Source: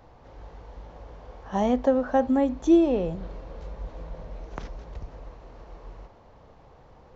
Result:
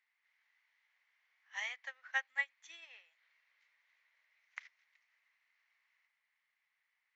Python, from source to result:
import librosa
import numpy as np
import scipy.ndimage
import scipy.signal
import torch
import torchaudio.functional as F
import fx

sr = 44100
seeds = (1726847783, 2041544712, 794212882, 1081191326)

y = fx.ladder_highpass(x, sr, hz=1900.0, resonance_pct=75)
y = fx.upward_expand(y, sr, threshold_db=-59.0, expansion=2.5)
y = y * librosa.db_to_amplitude(13.5)